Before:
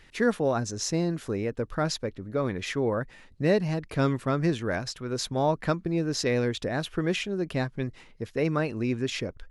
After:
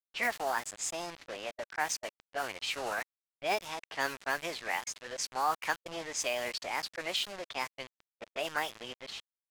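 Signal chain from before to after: ending faded out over 0.84 s; BPF 780–5800 Hz; bit-crush 7-bit; low-pass opened by the level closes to 2000 Hz, open at -28.5 dBFS; formant shift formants +4 st

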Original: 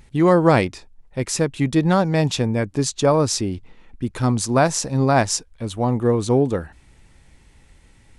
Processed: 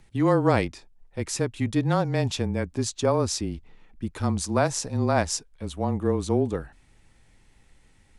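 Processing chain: frequency shift -23 Hz; gain -6 dB

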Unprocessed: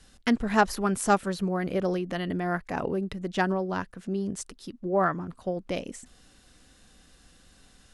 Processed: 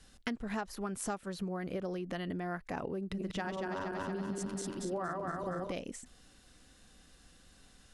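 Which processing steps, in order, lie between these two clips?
2.98–5.72 regenerating reverse delay 0.117 s, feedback 74%, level -2 dB; compressor 12:1, threshold -30 dBFS, peak gain reduction 15.5 dB; gain -3.5 dB

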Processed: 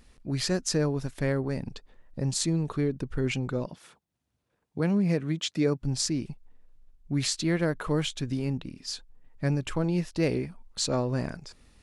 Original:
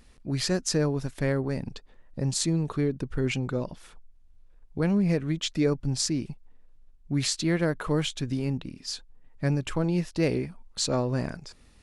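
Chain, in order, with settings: 3.66–5.82 HPF 100 Hz 24 dB/oct; gain -1 dB

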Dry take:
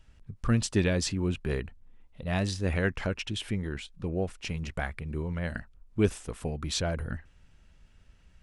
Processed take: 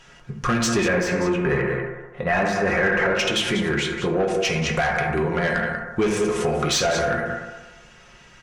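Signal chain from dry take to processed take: notches 50/100/150/200 Hz; comb 5.6 ms, depth 40%; echo 0.19 s -12 dB; reverb RT60 1.2 s, pre-delay 3 ms, DRR 0.5 dB; overdrive pedal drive 23 dB, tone 2900 Hz, clips at -9.5 dBFS; bell 6200 Hz +7 dB 0.37 oct; compressor 4:1, threshold -22 dBFS, peak gain reduction 7.5 dB; 0.88–3.15 resonant high shelf 2600 Hz -9.5 dB, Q 1.5; gain +3 dB

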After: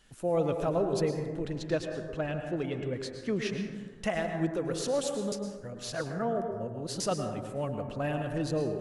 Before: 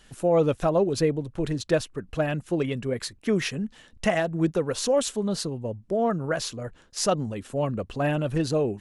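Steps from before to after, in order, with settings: 1.46–3.62 LPF 6800 Hz 12 dB/oct; 5.32–7 reverse; plate-style reverb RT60 1.5 s, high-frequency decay 0.35×, pre-delay 95 ms, DRR 4.5 dB; gain -7.5 dB

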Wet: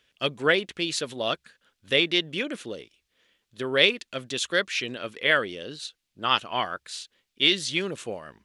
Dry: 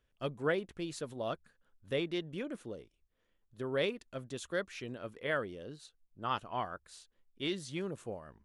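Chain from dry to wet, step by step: weighting filter D; gain +8.5 dB

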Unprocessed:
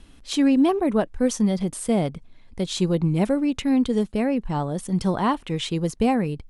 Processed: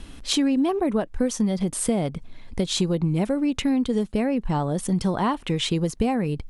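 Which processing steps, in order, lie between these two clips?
compressor 4:1, threshold -30 dBFS, peak gain reduction 13 dB; gain +8.5 dB

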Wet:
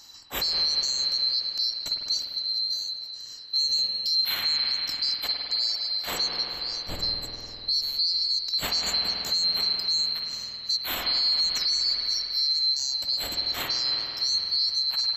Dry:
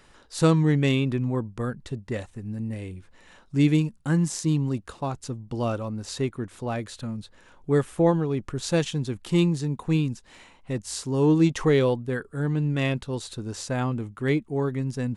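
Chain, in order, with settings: band-swap scrambler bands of 4000 Hz; in parallel at +0.5 dB: compressor, threshold -33 dBFS, peak gain reduction 17.5 dB; on the sum: reverb removal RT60 0.83 s; 6.43–6.95 tilt -3 dB/oct; spring tank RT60 3.5 s, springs 49 ms, chirp 60 ms, DRR -1 dB; limiter -17 dBFS, peak gain reduction 11.5 dB

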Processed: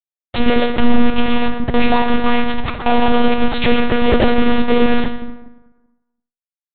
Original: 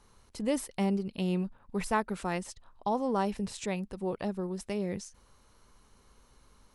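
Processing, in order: low shelf 120 Hz +4 dB; comb 4.8 ms, depth 88%; compressor 6:1, threshold -30 dBFS, peak gain reduction 11.5 dB; companded quantiser 2-bit; echo 0.127 s -23 dB; plate-style reverb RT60 1.1 s, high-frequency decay 0.6×, DRR 1.5 dB; monotone LPC vocoder at 8 kHz 240 Hz; maximiser +17 dB; gain -1 dB

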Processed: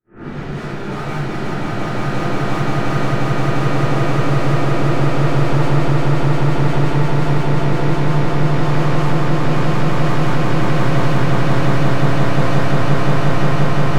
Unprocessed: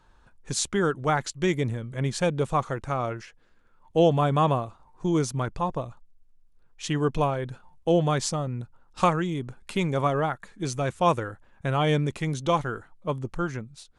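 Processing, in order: spectral swells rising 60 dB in 2.23 s; gate -29 dBFS, range -52 dB; steep low-pass 2800 Hz 96 dB/oct; bell 190 Hz +9 dB 2.1 oct; limiter -14.5 dBFS, peak gain reduction 11 dB; tube stage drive 32 dB, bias 0.4; overloaded stage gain 34.5 dB; swelling echo 0.176 s, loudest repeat 8, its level -3 dB; shoebox room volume 120 m³, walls mixed, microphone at 2.8 m; gain -3 dB

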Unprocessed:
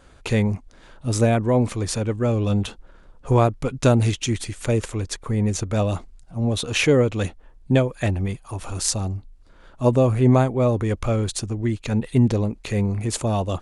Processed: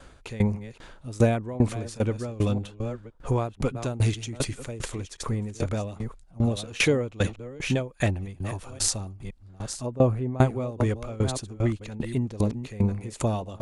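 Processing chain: reverse delay 0.517 s, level -11 dB; in parallel at +1 dB: compressor, threshold -28 dBFS, peak gain reduction 16 dB; 9.86–10.39 on the sum: high shelf 2300 Hz -11 dB; dB-ramp tremolo decaying 2.5 Hz, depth 21 dB; gain -1.5 dB

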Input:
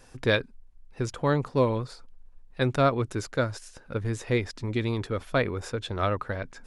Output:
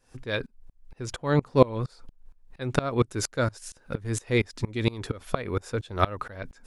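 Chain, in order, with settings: high shelf 6200 Hz +2 dB, from 2.9 s +8 dB; dB-ramp tremolo swelling 4.3 Hz, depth 25 dB; gain +8 dB

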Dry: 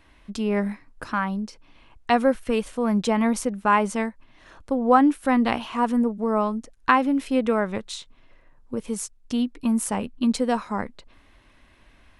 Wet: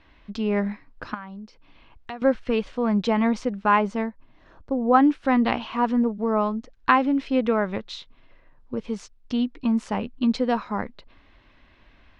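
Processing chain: LPF 4900 Hz 24 dB/oct; 1.14–2.22 compressor 3:1, threshold -39 dBFS, peak gain reduction 18 dB; 3.8–4.93 bell 3100 Hz -4 dB -> -14 dB 2.6 oct

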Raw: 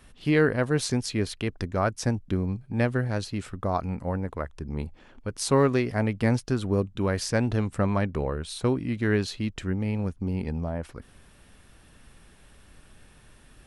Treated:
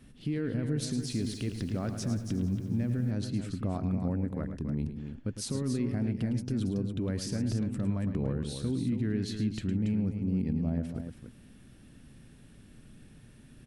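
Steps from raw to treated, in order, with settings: ten-band EQ 125 Hz +9 dB, 250 Hz +11 dB, 1000 Hz -6 dB; limiter -18 dBFS, peak gain reduction 16 dB; loudspeakers at several distances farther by 37 m -10 dB, 96 m -8 dB; 0.89–3.11 lo-fi delay 89 ms, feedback 80%, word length 8-bit, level -14.5 dB; gain -6 dB

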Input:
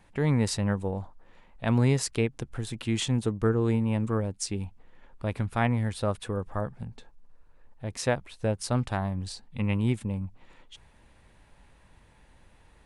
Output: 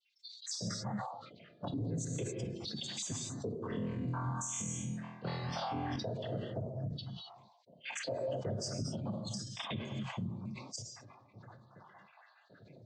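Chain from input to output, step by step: random spectral dropouts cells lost 77%; noise vocoder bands 16; resonant high shelf 3200 Hz +9 dB, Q 3; non-linear reverb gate 0.29 s flat, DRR 6 dB; compressor 3:1, threshold -48 dBFS, peak gain reduction 22.5 dB; 3.68–5.96 flutter echo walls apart 4.1 m, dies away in 0.84 s; 7.68–8.37 spectral gain 510–3200 Hz +9 dB; limiter -38.5 dBFS, peak gain reduction 12 dB; spectral noise reduction 18 dB; low-pass opened by the level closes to 2600 Hz, open at -46 dBFS; sustainer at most 56 dB/s; gain +9.5 dB

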